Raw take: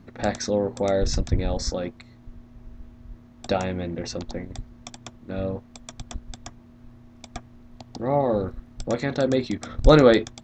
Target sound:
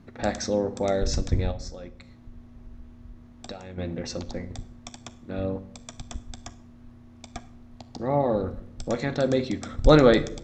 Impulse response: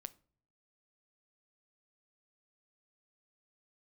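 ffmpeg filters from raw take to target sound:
-filter_complex "[0:a]asettb=1/sr,asplit=3[s0][s1][s2];[s0]atrim=end=1.514[s3];[s1]atrim=start=1.51:end=3.78,asetpts=PTS-STARTPTS,afade=t=in:d=0.004:c=qsin,afade=t=out:st=2.266:d=0.004:c=qsin,acompressor=threshold=0.0178:ratio=8[s4];[s2]atrim=start=3.776[s5];[s3][s4]acrossfade=d=0.004:c1=hsin:c2=qsin[s6];[s6][s5]acrossfade=d=0.004:c1=qsin:c2=hsin[s7];[1:a]atrim=start_sample=2205,asetrate=22932,aresample=44100[s8];[s7][s8]afir=irnorm=-1:irlink=0"

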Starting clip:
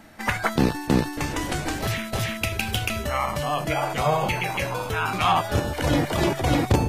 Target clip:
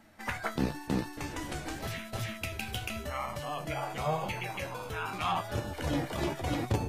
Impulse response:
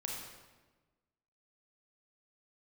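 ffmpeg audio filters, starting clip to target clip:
-af "flanger=delay=8.1:depth=8.2:regen=56:speed=0.9:shape=triangular,volume=0.473"

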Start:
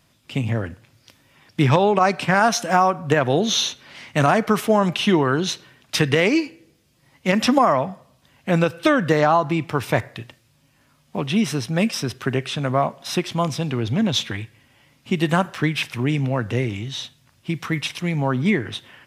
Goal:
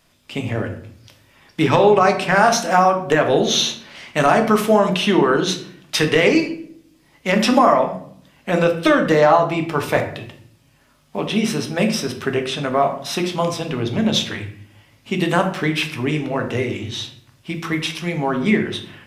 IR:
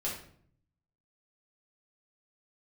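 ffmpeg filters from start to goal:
-filter_complex "[0:a]equalizer=f=130:w=0.77:g=-11,asplit=2[s0][s1];[1:a]atrim=start_sample=2205,lowshelf=f=500:g=7[s2];[s1][s2]afir=irnorm=-1:irlink=0,volume=0.596[s3];[s0][s3]amix=inputs=2:normalize=0,volume=0.841"

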